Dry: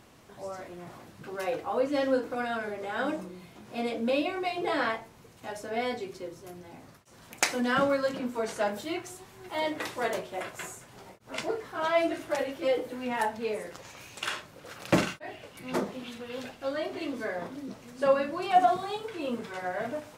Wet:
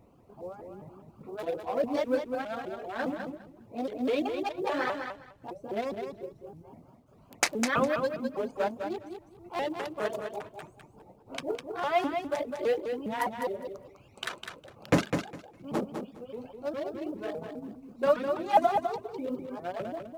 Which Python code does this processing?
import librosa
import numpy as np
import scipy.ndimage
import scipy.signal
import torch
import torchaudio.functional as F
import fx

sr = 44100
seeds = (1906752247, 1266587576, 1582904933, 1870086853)

p1 = fx.wiener(x, sr, points=25)
p2 = fx.dereverb_blind(p1, sr, rt60_s=1.2)
p3 = fx.quant_companded(p2, sr, bits=8)
p4 = p3 + fx.echo_feedback(p3, sr, ms=204, feedback_pct=18, wet_db=-6.5, dry=0)
y = fx.vibrato_shape(p4, sr, shape='saw_up', rate_hz=4.9, depth_cents=250.0)